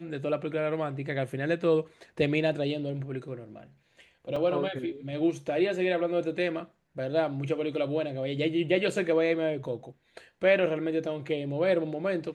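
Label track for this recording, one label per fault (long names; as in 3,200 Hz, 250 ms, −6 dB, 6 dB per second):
4.360000	4.360000	drop-out 3.5 ms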